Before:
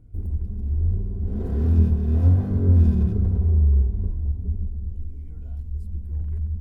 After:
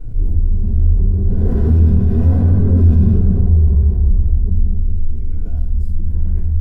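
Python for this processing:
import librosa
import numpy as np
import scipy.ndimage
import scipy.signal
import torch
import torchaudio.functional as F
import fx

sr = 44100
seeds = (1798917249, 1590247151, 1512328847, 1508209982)

y = fx.room_shoebox(x, sr, seeds[0], volume_m3=130.0, walls='mixed', distance_m=4.8)
y = fx.env_flatten(y, sr, amount_pct=50)
y = F.gain(torch.from_numpy(y), -13.0).numpy()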